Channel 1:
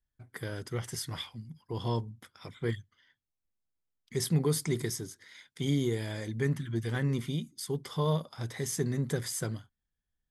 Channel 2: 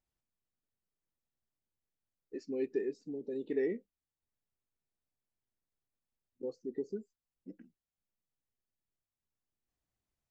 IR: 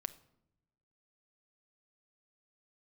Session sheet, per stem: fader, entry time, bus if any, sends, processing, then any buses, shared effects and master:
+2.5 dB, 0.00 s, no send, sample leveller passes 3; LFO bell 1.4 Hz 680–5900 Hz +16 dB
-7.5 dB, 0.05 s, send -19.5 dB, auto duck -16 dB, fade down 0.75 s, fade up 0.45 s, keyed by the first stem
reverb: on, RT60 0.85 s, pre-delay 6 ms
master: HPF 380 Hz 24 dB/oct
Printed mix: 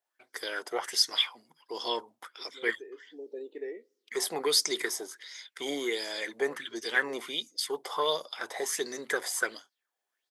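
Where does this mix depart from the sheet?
stem 1: missing sample leveller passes 3; stem 2 -7.5 dB -> +1.5 dB

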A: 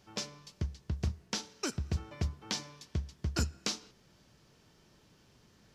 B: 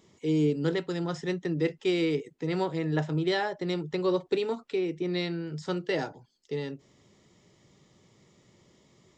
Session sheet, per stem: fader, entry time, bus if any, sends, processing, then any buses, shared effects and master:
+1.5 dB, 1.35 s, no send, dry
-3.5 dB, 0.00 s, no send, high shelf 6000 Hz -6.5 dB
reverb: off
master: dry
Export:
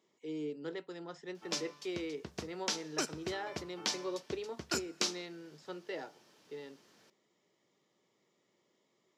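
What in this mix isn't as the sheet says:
stem B -3.5 dB -> -11.0 dB; master: extra HPF 310 Hz 12 dB/oct

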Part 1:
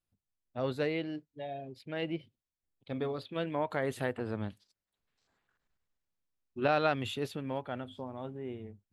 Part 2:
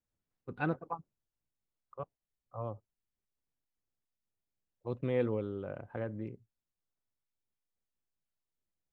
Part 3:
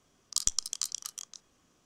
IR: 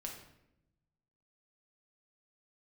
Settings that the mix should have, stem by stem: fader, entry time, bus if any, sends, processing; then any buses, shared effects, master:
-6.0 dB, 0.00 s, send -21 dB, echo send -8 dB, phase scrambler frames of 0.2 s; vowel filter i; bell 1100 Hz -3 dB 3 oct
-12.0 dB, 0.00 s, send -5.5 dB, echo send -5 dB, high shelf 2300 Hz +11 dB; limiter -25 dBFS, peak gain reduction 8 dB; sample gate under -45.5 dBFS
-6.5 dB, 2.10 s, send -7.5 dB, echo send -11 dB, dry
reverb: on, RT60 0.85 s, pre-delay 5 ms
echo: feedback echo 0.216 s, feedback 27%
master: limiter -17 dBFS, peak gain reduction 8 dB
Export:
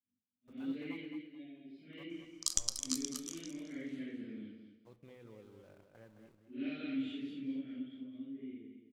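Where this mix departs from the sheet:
stem 1 -6.0 dB -> +2.5 dB; stem 2 -12.0 dB -> -23.0 dB; master: missing limiter -17 dBFS, peak gain reduction 8 dB

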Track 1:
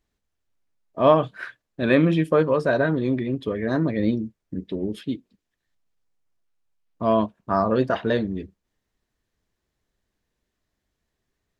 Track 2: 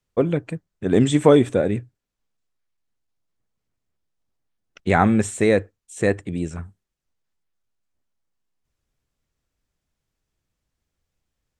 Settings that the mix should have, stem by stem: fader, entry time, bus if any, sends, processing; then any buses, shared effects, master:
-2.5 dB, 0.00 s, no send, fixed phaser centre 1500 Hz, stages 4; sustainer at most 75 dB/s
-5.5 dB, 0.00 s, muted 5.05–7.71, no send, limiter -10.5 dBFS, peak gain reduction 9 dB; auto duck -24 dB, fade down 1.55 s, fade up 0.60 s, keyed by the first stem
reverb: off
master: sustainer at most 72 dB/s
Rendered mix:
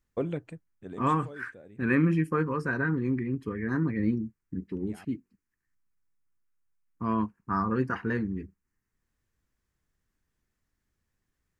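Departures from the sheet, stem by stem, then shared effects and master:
stem 1: missing sustainer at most 75 dB/s; master: missing sustainer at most 72 dB/s

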